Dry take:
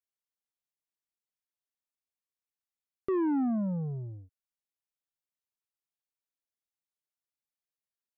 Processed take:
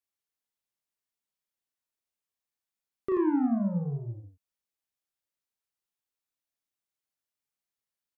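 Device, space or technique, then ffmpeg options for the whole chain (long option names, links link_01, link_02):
slapback doubling: -filter_complex "[0:a]asplit=3[link_01][link_02][link_03];[link_02]adelay=35,volume=-5dB[link_04];[link_03]adelay=84,volume=-5dB[link_05];[link_01][link_04][link_05]amix=inputs=3:normalize=0"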